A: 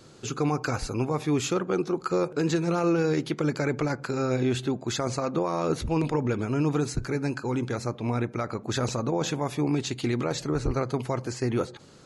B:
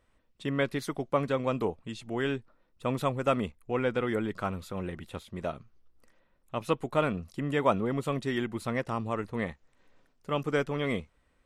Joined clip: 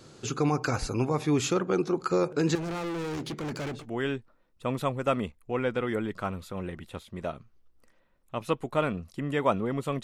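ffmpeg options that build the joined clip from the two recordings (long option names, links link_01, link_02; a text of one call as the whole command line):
ffmpeg -i cue0.wav -i cue1.wav -filter_complex "[0:a]asettb=1/sr,asplit=3[link_01][link_02][link_03];[link_01]atrim=end=2.554[link_04];[link_02]atrim=start=2.55:end=3.86,asetpts=PTS-STARTPTS,afade=type=in:duration=0.004:curve=qsin,afade=type=out:start_time=1.306:duration=0.004:curve=qsin,asoftclip=type=hard:threshold=-31.5dB[link_05];[link_03]atrim=start=3.856[link_06];[link_04][link_05]acrossfade=duration=0.004:curve1=hsin:curve2=qsin[link_07];[link_07][link_06]acrossfade=duration=0.004:curve1=qsin:curve2=hsin,apad=whole_dur=10.03,atrim=end=10.03,atrim=end=3.86,asetpts=PTS-STARTPTS[link_08];[1:a]atrim=start=1.9:end=8.23,asetpts=PTS-STARTPTS[link_09];[link_08][link_09]acrossfade=duration=0.16:curve1=tri:curve2=tri" out.wav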